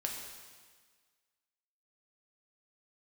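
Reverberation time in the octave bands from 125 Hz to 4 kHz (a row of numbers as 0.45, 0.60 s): 1.5, 1.6, 1.5, 1.6, 1.6, 1.6 s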